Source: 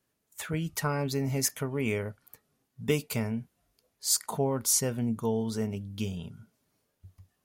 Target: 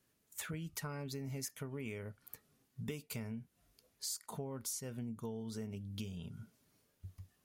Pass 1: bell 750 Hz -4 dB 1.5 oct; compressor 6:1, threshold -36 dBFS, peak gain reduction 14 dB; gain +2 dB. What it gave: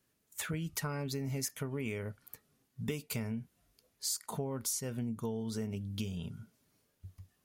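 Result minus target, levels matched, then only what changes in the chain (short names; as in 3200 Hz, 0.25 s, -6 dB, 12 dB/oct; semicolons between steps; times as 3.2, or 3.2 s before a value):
compressor: peak gain reduction -6 dB
change: compressor 6:1, threshold -43 dBFS, peak gain reduction 20 dB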